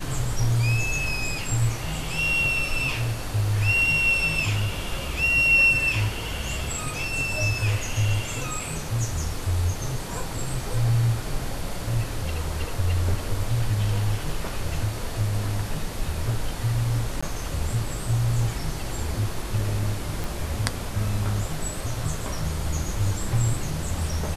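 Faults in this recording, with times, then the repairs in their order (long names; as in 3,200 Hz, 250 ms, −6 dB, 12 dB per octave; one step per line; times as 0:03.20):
0:17.21–0:17.23: drop-out 15 ms
0:20.24: click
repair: click removal
repair the gap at 0:17.21, 15 ms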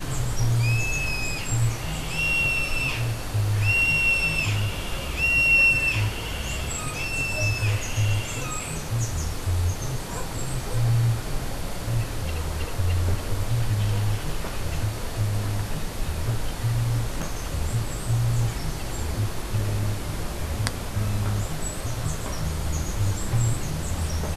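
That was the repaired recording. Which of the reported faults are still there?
none of them is left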